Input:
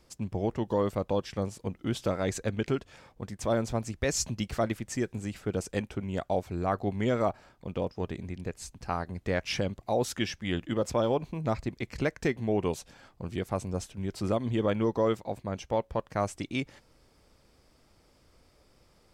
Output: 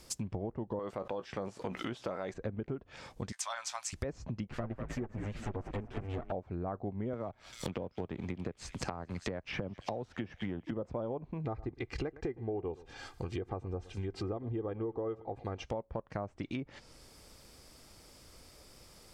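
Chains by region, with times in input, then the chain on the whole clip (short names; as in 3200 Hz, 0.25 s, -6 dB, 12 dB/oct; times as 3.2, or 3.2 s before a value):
0.79–2.34 tilt +4.5 dB/oct + doubler 16 ms -13.5 dB + fast leveller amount 70%
3.32–3.93 inverse Chebyshev high-pass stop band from 440 Hz + doubler 16 ms -10.5 dB
4.47–6.32 minimum comb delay 8.2 ms + bell 5200 Hz -5 dB 1.6 oct + frequency-shifting echo 0.196 s, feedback 32%, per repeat -69 Hz, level -9 dB
7.13–10.71 G.711 law mismatch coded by A + thin delay 0.198 s, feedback 71%, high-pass 3000 Hz, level -17 dB + three-band squash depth 100%
11.45–15.64 comb 2.5 ms, depth 58% + echo 0.113 s -22 dB
whole clip: treble ducked by the level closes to 980 Hz, closed at -27.5 dBFS; high shelf 4200 Hz +11 dB; compressor 6:1, threshold -39 dBFS; gain +4 dB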